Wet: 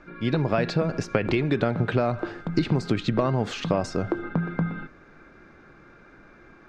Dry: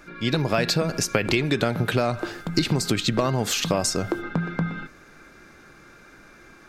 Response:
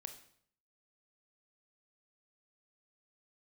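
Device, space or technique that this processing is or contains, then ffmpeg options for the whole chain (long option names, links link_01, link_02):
through cloth: -af "lowpass=6600,highshelf=frequency=3500:gain=-18"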